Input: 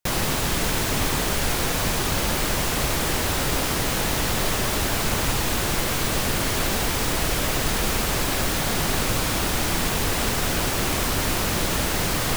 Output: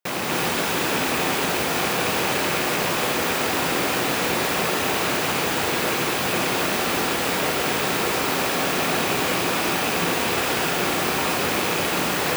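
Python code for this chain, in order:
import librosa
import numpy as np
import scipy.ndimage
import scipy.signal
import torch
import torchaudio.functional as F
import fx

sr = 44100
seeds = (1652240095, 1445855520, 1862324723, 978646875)

y = fx.rattle_buzz(x, sr, strikes_db=-25.0, level_db=-16.0)
y = scipy.signal.sosfilt(scipy.signal.butter(2, 220.0, 'highpass', fs=sr, output='sos'), y)
y = fx.peak_eq(y, sr, hz=9900.0, db=-7.0, octaves=2.5)
y = fx.rev_gated(y, sr, seeds[0], gate_ms=320, shape='rising', drr_db=-2.0)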